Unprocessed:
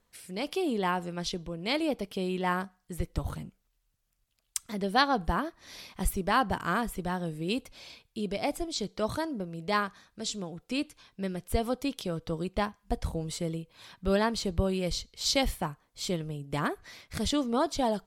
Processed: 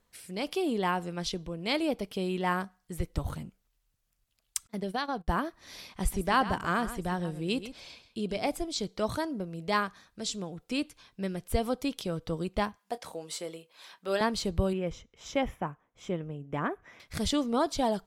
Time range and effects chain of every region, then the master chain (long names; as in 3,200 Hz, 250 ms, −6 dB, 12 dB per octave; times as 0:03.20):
0:04.67–0:05.28: downward compressor 4 to 1, threshold −28 dBFS + noise gate −36 dBFS, range −31 dB
0:05.88–0:08.47: low-pass filter 11,000 Hz + single-tap delay 133 ms −12.5 dB
0:12.78–0:14.21: high-pass filter 450 Hz + double-tracking delay 26 ms −14 dB
0:14.73–0:17.00: moving average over 10 samples + low-shelf EQ 81 Hz −11.5 dB
whole clip: no processing